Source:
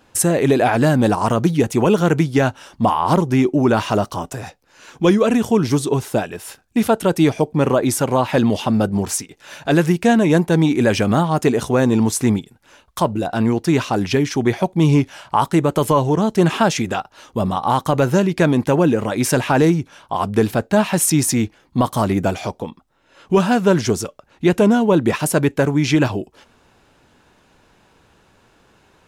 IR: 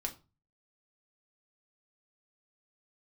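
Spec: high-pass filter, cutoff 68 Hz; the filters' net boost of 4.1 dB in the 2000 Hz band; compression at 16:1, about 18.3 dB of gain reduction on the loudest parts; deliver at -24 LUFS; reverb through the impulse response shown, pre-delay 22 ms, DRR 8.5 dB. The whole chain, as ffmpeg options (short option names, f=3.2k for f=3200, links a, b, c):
-filter_complex "[0:a]highpass=68,equalizer=f=2k:t=o:g=5.5,acompressor=threshold=-28dB:ratio=16,asplit=2[a][b];[1:a]atrim=start_sample=2205,adelay=22[c];[b][c]afir=irnorm=-1:irlink=0,volume=-9dB[d];[a][d]amix=inputs=2:normalize=0,volume=8.5dB"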